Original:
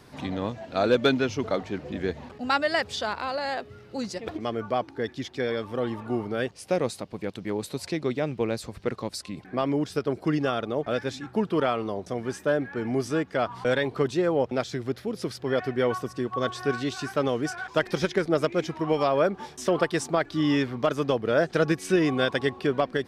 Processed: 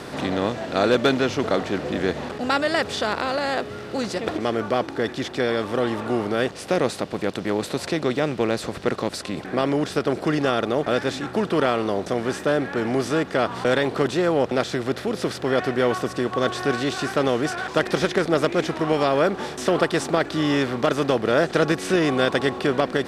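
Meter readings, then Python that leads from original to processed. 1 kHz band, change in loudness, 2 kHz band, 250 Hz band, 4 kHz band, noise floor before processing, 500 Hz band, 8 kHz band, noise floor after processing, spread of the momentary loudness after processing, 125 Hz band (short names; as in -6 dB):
+5.0 dB, +4.5 dB, +5.0 dB, +4.0 dB, +5.5 dB, -49 dBFS, +4.0 dB, +5.0 dB, -36 dBFS, 6 LU, +3.0 dB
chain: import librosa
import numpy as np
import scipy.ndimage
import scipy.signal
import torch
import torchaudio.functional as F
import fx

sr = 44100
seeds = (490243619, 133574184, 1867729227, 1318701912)

y = fx.bin_compress(x, sr, power=0.6)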